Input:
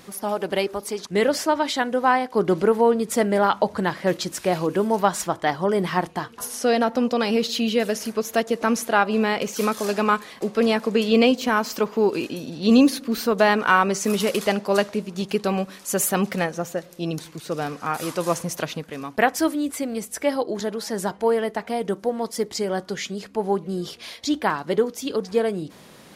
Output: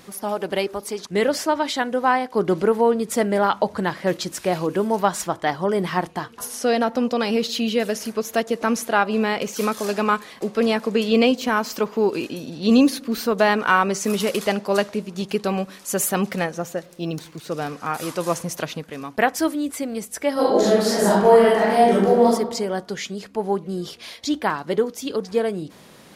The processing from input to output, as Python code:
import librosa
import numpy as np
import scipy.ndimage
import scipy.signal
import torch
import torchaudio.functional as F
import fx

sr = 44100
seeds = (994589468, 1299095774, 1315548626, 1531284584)

y = fx.resample_linear(x, sr, factor=2, at=(16.86, 17.47))
y = fx.reverb_throw(y, sr, start_s=20.33, length_s=1.96, rt60_s=0.96, drr_db=-9.0)